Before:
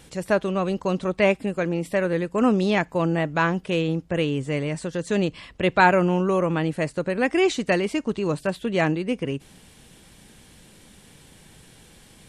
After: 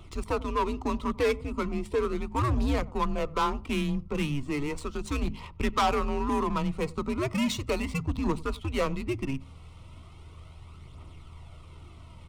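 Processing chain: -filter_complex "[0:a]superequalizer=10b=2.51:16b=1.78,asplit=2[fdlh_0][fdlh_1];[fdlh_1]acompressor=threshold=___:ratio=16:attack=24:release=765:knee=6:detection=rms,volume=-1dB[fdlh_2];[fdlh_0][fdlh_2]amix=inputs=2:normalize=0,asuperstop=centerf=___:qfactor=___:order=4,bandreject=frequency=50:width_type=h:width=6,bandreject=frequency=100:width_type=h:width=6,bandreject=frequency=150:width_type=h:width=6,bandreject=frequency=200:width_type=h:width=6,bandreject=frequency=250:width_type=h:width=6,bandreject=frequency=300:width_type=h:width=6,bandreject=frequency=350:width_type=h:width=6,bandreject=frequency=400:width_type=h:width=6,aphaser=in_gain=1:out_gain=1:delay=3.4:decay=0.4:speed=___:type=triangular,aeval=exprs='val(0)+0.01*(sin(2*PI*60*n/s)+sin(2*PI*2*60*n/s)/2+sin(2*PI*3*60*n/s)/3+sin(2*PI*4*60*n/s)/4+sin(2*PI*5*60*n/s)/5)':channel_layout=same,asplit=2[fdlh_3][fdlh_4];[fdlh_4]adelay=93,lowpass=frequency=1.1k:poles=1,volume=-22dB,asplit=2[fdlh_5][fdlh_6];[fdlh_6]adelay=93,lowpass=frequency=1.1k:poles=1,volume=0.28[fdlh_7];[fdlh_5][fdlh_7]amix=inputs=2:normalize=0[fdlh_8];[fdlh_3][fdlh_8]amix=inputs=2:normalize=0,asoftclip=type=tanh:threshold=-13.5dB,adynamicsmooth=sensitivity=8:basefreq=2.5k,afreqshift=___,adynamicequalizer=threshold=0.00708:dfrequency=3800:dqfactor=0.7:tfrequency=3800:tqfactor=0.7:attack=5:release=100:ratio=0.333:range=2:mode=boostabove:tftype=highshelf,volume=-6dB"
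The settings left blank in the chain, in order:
-27dB, 1800, 3.5, 0.36, -140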